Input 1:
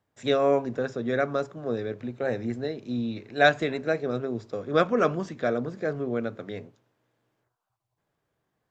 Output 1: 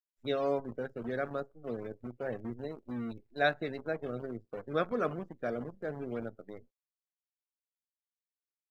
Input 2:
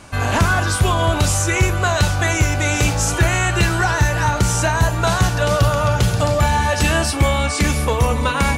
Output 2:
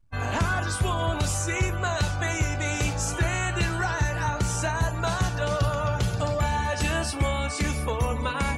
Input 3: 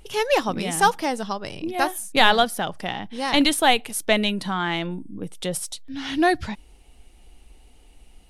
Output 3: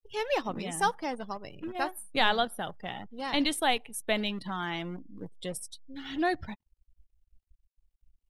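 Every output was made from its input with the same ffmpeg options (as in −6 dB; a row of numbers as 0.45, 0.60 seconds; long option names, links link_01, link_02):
-af "acrusher=bits=6:dc=4:mix=0:aa=0.000001,afftdn=noise_reduction=29:noise_floor=-35,volume=-9dB"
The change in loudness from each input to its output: −9.0, −9.0, −9.0 LU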